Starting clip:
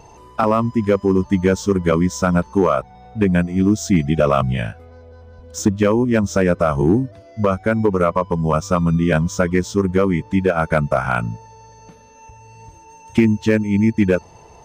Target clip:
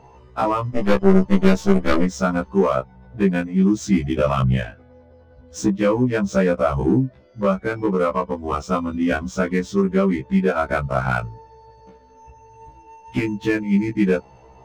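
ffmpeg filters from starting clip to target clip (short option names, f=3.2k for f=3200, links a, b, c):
-filter_complex "[0:a]asplit=3[a][b][c];[a]afade=t=out:st=0.71:d=0.02[d];[b]aeval=exprs='0.531*(cos(1*acos(clip(val(0)/0.531,-1,1)))-cos(1*PI/2))+0.168*(cos(4*acos(clip(val(0)/0.531,-1,1)))-cos(4*PI/2))+0.0422*(cos(5*acos(clip(val(0)/0.531,-1,1)))-cos(5*PI/2))+0.0335*(cos(7*acos(clip(val(0)/0.531,-1,1)))-cos(7*PI/2))':c=same,afade=t=in:st=0.71:d=0.02,afade=t=out:st=2.04:d=0.02[e];[c]afade=t=in:st=2.04:d=0.02[f];[d][e][f]amix=inputs=3:normalize=0,adynamicsmooth=sensitivity=4.5:basefreq=3.3k,afftfilt=real='re*1.73*eq(mod(b,3),0)':imag='im*1.73*eq(mod(b,3),0)':win_size=2048:overlap=0.75"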